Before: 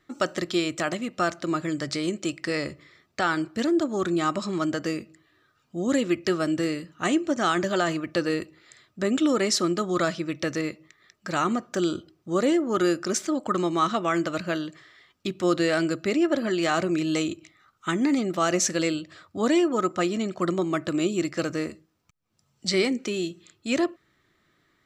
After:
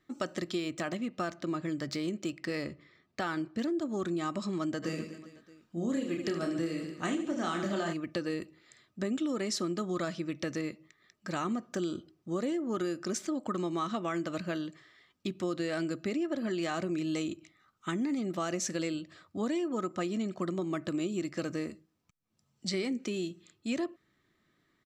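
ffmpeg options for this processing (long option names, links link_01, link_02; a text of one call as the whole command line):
ffmpeg -i in.wav -filter_complex "[0:a]asettb=1/sr,asplit=3[link_01][link_02][link_03];[link_01]atrim=end=0.584[link_04];[link_02]atrim=start=0.58:end=3.78,asetpts=PTS-STARTPTS,afade=type=in:duration=0.004:curve=qsin,afade=type=out:start_time=3.196:duration=0.004:curve=qsin,adynamicsmooth=sensitivity=7.5:basefreq=6100[link_05];[link_03]atrim=start=3.776[link_06];[link_04][link_05]acrossfade=duration=0.004:curve1=hsin:curve2=qsin[link_07];[link_07][link_06]acrossfade=duration=0.004:curve1=qsin:curve2=hsin,asplit=3[link_08][link_09][link_10];[link_08]afade=type=out:start_time=4.82:duration=0.02[link_11];[link_09]aecho=1:1:30|75|142.5|243.8|395.6|623.4:0.631|0.398|0.251|0.158|0.1|0.0631,afade=type=in:start_time=4.82:duration=0.02,afade=type=out:start_time=7.92:duration=0.02[link_12];[link_10]afade=type=in:start_time=7.92:duration=0.02[link_13];[link_11][link_12][link_13]amix=inputs=3:normalize=0,equalizer=frequency=220:width_type=o:width=1.1:gain=5,bandreject=frequency=1400:width=18,acompressor=threshold=-22dB:ratio=6,volume=-7dB" out.wav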